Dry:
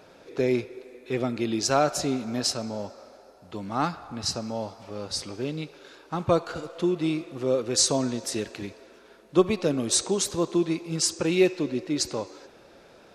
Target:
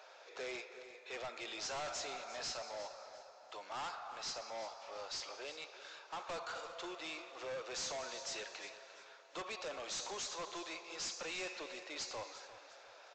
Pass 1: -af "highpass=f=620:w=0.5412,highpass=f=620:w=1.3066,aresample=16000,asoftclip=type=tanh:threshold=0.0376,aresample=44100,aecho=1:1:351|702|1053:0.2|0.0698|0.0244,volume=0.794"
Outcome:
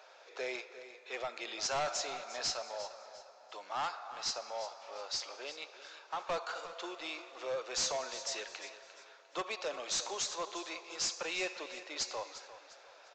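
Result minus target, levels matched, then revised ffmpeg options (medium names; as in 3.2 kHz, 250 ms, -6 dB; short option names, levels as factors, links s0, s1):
saturation: distortion -5 dB
-af "highpass=f=620:w=0.5412,highpass=f=620:w=1.3066,aresample=16000,asoftclip=type=tanh:threshold=0.0126,aresample=44100,aecho=1:1:351|702|1053:0.2|0.0698|0.0244,volume=0.794"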